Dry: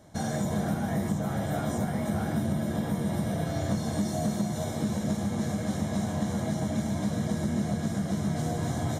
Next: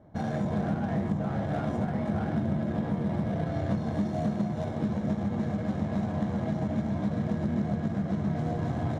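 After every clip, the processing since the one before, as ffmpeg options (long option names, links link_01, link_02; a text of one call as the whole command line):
ffmpeg -i in.wav -af "adynamicsmooth=sensitivity=4.5:basefreq=1300" out.wav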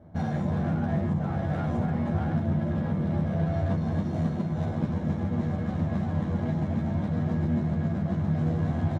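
ffmpeg -i in.wav -filter_complex "[0:a]bass=frequency=250:gain=4,treble=frequency=4000:gain=-4,asplit=2[link_01][link_02];[link_02]asoftclip=type=hard:threshold=-30.5dB,volume=-8dB[link_03];[link_01][link_03]amix=inputs=2:normalize=0,asplit=2[link_04][link_05];[link_05]adelay=12,volume=-3dB[link_06];[link_04][link_06]amix=inputs=2:normalize=0,volume=-3dB" out.wav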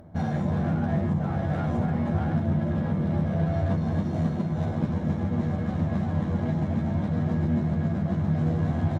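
ffmpeg -i in.wav -af "acompressor=mode=upward:threshold=-48dB:ratio=2.5,volume=1.5dB" out.wav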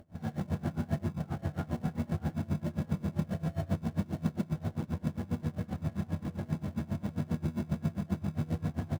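ffmpeg -i in.wav -filter_complex "[0:a]asplit=2[link_01][link_02];[link_02]acrusher=samples=36:mix=1:aa=0.000001,volume=-9dB[link_03];[link_01][link_03]amix=inputs=2:normalize=0,aeval=exprs='val(0)*pow(10,-23*(0.5-0.5*cos(2*PI*7.5*n/s))/20)':channel_layout=same,volume=-5dB" out.wav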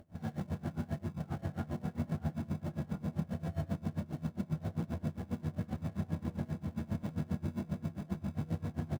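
ffmpeg -i in.wav -filter_complex "[0:a]alimiter=limit=-24dB:level=0:latency=1:release=456,asplit=2[link_01][link_02];[link_02]adelay=1341,volume=-6dB,highshelf=frequency=4000:gain=-30.2[link_03];[link_01][link_03]amix=inputs=2:normalize=0,volume=-2dB" out.wav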